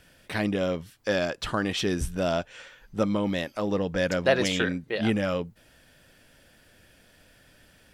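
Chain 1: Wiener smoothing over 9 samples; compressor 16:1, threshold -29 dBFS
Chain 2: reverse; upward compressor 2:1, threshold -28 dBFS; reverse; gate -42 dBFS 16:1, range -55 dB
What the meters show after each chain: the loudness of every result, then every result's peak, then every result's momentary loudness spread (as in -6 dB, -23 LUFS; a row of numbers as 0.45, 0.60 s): -34.5, -27.5 LUFS; -18.5, -9.0 dBFS; 6, 9 LU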